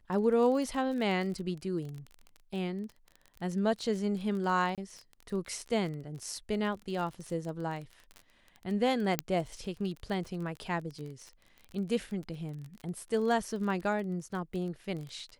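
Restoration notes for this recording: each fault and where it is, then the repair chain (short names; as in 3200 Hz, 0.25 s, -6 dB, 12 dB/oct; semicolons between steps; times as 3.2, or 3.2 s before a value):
crackle 28/s -37 dBFS
4.75–4.78 gap 27 ms
9.19 pop -10 dBFS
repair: de-click; interpolate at 4.75, 27 ms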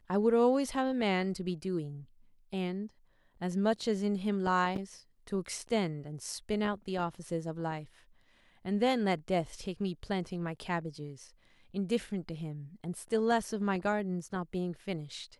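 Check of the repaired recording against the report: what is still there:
none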